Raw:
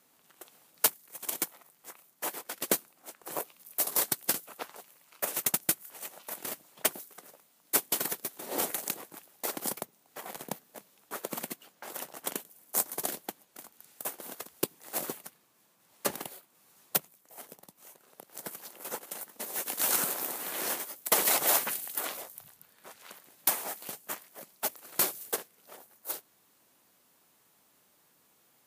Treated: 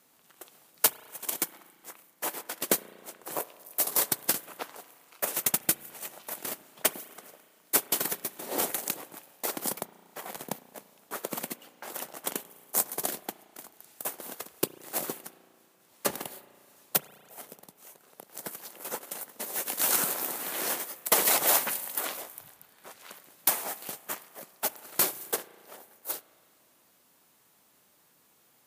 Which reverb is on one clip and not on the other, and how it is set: spring tank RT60 2.2 s, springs 34 ms, chirp 75 ms, DRR 16 dB; gain +2 dB

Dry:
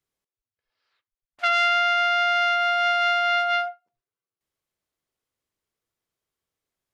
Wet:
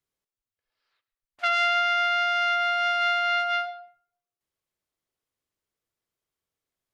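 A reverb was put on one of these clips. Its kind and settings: digital reverb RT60 0.57 s, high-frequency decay 0.55×, pre-delay 70 ms, DRR 16 dB; gain -2.5 dB

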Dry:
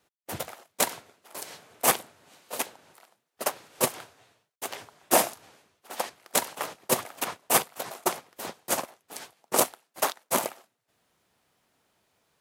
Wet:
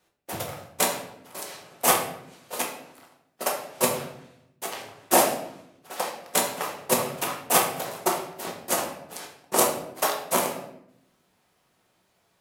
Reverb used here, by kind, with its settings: shoebox room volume 190 m³, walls mixed, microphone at 1 m

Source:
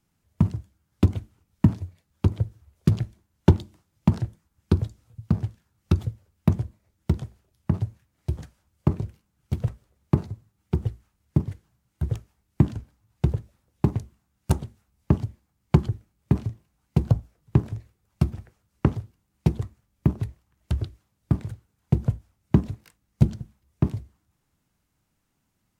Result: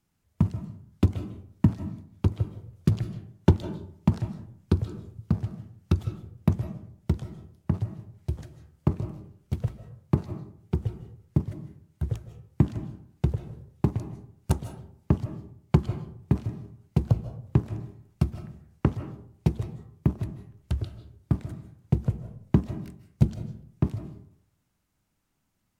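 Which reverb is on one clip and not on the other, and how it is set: digital reverb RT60 0.63 s, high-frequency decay 0.5×, pre-delay 0.115 s, DRR 10.5 dB; gain -2.5 dB

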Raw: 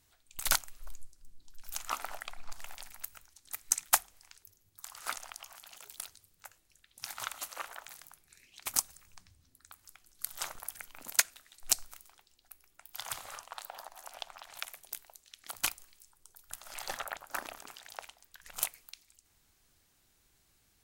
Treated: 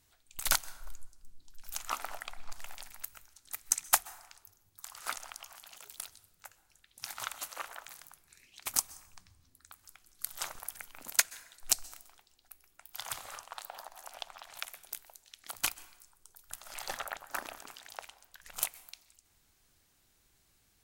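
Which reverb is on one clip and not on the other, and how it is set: plate-style reverb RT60 0.94 s, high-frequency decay 0.55×, pre-delay 0.115 s, DRR 20 dB

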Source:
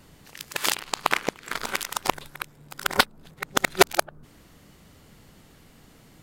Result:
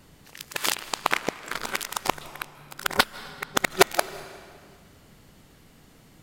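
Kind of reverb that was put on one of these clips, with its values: digital reverb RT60 2 s, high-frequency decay 0.9×, pre-delay 0.115 s, DRR 16 dB; gain -1 dB

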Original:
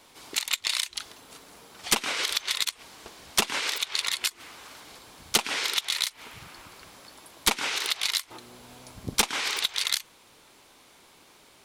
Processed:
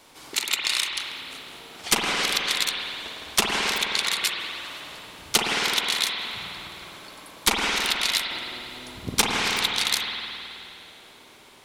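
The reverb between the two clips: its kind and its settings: spring tank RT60 2.8 s, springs 52 ms, chirp 50 ms, DRR -0.5 dB; gain +2 dB

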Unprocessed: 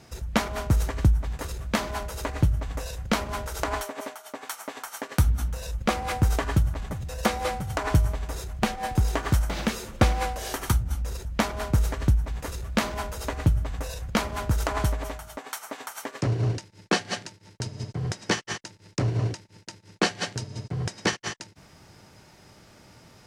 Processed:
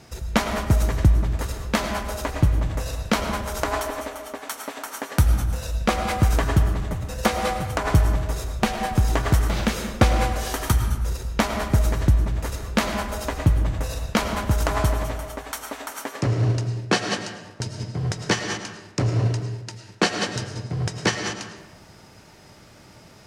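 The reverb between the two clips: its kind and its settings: digital reverb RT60 1.1 s, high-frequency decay 0.55×, pre-delay 65 ms, DRR 6 dB; gain +3 dB

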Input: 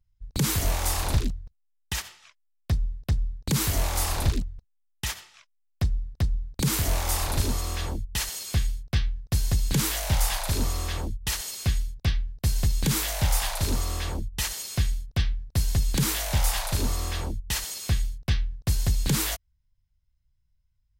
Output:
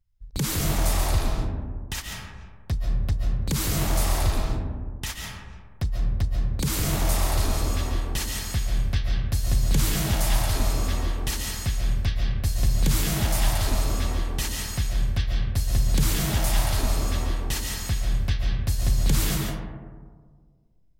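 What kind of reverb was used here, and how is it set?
digital reverb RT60 1.7 s, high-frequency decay 0.3×, pre-delay 0.1 s, DRR -0.5 dB; gain -2 dB

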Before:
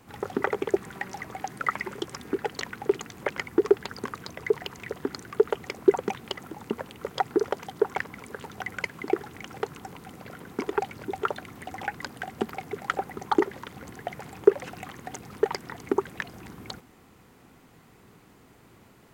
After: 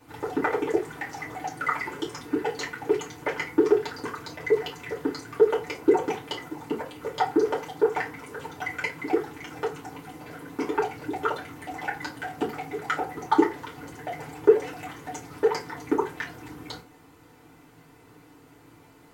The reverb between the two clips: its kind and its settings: FDN reverb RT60 0.31 s, low-frequency decay 0.75×, high-frequency decay 0.75×, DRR -6.5 dB; gain -5.5 dB

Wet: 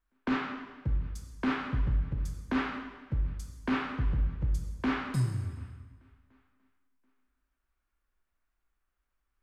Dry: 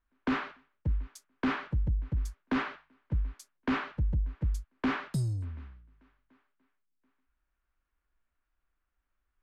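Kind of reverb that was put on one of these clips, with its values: plate-style reverb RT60 1.3 s, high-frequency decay 0.9×, DRR 2.5 dB; gain -1.5 dB

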